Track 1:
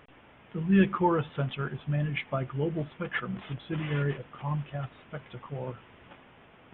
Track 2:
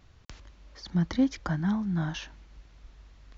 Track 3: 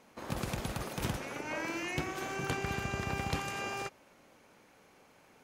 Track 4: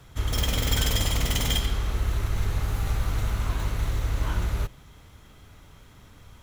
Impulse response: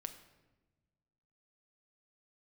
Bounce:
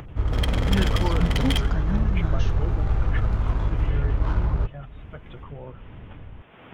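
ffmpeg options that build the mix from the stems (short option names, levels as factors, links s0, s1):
-filter_complex "[0:a]volume=0.562[s0];[1:a]adelay=250,volume=0.75[s1];[2:a]volume=0.112[s2];[3:a]adynamicsmooth=sensitivity=2.5:basefreq=640,volume=1.26,asplit=2[s3][s4];[s4]volume=0.398[s5];[4:a]atrim=start_sample=2205[s6];[s5][s6]afir=irnorm=-1:irlink=0[s7];[s0][s1][s2][s3][s7]amix=inputs=5:normalize=0,acompressor=mode=upward:threshold=0.0251:ratio=2.5"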